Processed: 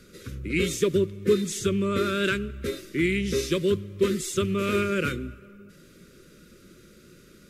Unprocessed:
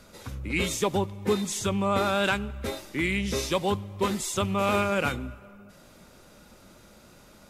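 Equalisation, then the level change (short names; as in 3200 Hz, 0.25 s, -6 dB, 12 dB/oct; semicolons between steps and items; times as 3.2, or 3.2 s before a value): Chebyshev band-stop 470–1400 Hz, order 2; bell 160 Hz +6.5 dB 0.4 oct; bell 370 Hz +7.5 dB 0.48 oct; 0.0 dB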